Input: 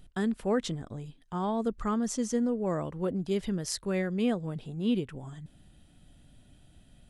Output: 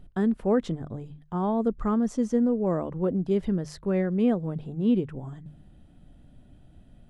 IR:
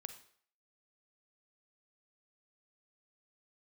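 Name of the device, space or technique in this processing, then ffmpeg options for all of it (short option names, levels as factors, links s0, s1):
through cloth: -filter_complex "[0:a]asettb=1/sr,asplit=3[s0][s1][s2];[s0]atrim=end=3.604[s3];[s1]atrim=start=3.6:end=4.08,asetpts=PTS-STARTPTS,afade=t=in:d=0.004:c=qsin,afade=t=out:st=0.476:d=0.004:c=qsin,highshelf=f=9600:g=-9[s4];[s2]atrim=start=4.076[s5];[s3][s4]acrossfade=d=0.004:c1=hsin:c2=qsin[s6];[s6][s5]acrossfade=d=0.004:c1=qsin:c2=hsin,highshelf=f=2000:g=-16.5,bandreject=f=50:t=h:w=6,bandreject=f=100:t=h:w=6,bandreject=f=150:t=h:w=6,volume=1.88"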